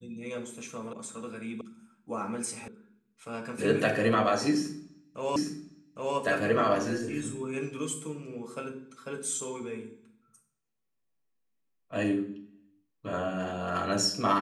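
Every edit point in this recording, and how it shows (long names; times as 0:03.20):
0:00.93: cut off before it has died away
0:01.61: cut off before it has died away
0:02.68: cut off before it has died away
0:05.36: the same again, the last 0.81 s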